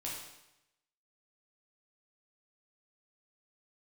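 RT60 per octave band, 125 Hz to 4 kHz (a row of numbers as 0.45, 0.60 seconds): 0.95, 0.90, 0.90, 0.90, 0.90, 0.85 seconds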